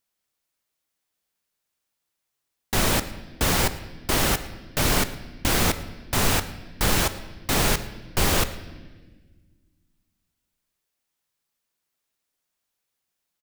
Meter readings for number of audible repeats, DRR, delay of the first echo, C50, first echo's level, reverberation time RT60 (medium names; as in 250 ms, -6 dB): 1, 11.5 dB, 111 ms, 13.0 dB, -22.0 dB, 1.4 s